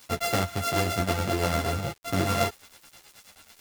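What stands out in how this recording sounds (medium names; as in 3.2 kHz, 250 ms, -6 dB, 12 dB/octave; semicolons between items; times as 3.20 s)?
a buzz of ramps at a fixed pitch in blocks of 64 samples; tremolo triangle 9.2 Hz, depth 40%; a quantiser's noise floor 8-bit, dither none; a shimmering, thickened sound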